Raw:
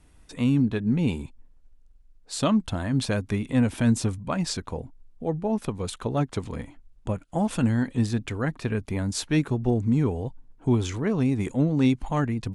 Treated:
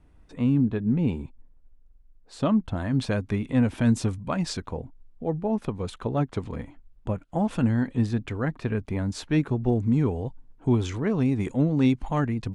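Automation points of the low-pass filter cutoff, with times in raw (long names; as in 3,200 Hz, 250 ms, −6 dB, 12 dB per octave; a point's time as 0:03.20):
low-pass filter 6 dB per octave
1,200 Hz
from 0:02.76 3,000 Hz
from 0:03.85 5,100 Hz
from 0:04.68 2,400 Hz
from 0:09.67 4,400 Hz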